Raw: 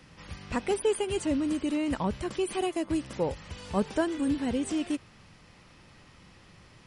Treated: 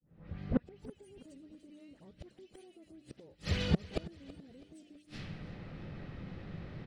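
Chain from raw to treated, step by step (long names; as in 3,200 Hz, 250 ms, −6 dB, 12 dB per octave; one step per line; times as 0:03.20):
fade in at the beginning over 1.23 s
low-pass that shuts in the quiet parts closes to 1,100 Hz, open at −27 dBFS
mains-hum notches 60/120/180/240/300 Hz
pitch-shifted copies added −7 semitones −16 dB, +12 semitones −18 dB
dynamic equaliser 410 Hz, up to +6 dB, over −42 dBFS, Q 0.85
brickwall limiter −19.5 dBFS, peak gain reduction 8 dB
all-pass dispersion highs, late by 108 ms, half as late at 2,200 Hz
gate with flip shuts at −27 dBFS, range −38 dB
graphic EQ with 15 bands 160 Hz +5 dB, 1,000 Hz −11 dB, 4,000 Hz +6 dB
repeating echo 327 ms, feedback 39%, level −18 dB
level +10 dB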